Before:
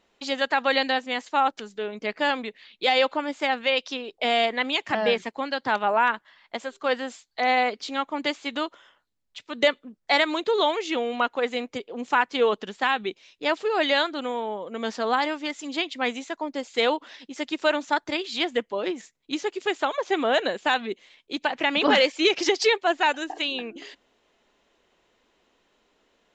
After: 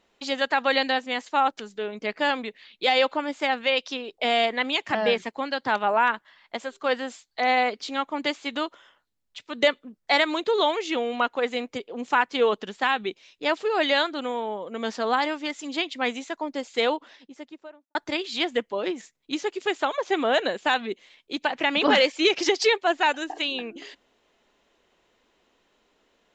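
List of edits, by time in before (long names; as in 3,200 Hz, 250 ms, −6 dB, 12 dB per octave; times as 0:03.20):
0:16.64–0:17.95: fade out and dull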